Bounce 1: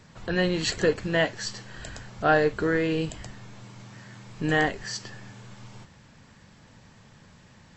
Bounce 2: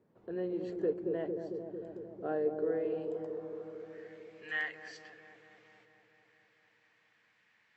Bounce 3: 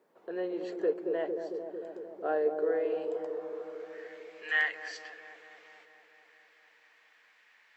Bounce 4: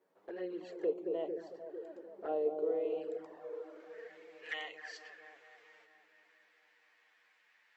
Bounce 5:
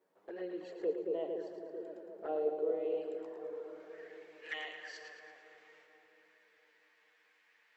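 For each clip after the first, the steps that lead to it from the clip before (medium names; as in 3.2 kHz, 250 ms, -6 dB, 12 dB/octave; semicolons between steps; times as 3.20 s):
band-pass sweep 390 Hz -> 2.1 kHz, 2.46–4.15 s; feedback echo behind a low-pass 225 ms, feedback 72%, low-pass 670 Hz, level -4 dB; trim -6.5 dB
high-pass 510 Hz 12 dB/octave; trim +7.5 dB
touch-sensitive flanger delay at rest 11.2 ms, full sweep at -28.5 dBFS; trim -3.5 dB
two-band feedback delay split 410 Hz, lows 514 ms, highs 111 ms, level -8 dB; trim -1 dB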